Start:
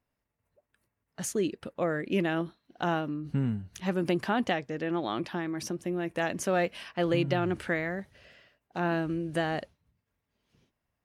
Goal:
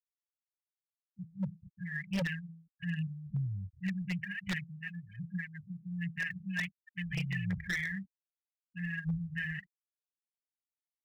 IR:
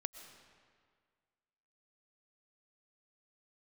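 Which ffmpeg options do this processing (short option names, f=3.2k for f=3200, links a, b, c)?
-filter_complex "[0:a]acrossover=split=4100[a][b];[b]acompressor=threshold=-60dB:ratio=4:attack=1:release=60[c];[a][c]amix=inputs=2:normalize=0,afwtdn=0.01,afftfilt=real='re*(1-between(b*sr/4096,200,1600))':imag='im*(1-between(b*sr/4096,200,1600))':win_size=4096:overlap=0.75,bandreject=f=82.25:t=h:w=4,bandreject=f=164.5:t=h:w=4,afftfilt=real='re*gte(hypot(re,im),0.0112)':imag='im*gte(hypot(re,im),0.0112)':win_size=1024:overlap=0.75,acrossover=split=290|2100[d][e][f];[e]asoftclip=type=tanh:threshold=-26.5dB[g];[d][g][f]amix=inputs=3:normalize=0,aphaser=in_gain=1:out_gain=1:delay=4.4:decay=0.53:speed=1.3:type=triangular,aeval=exprs='0.0447*(abs(mod(val(0)/0.0447+3,4)-2)-1)':c=same"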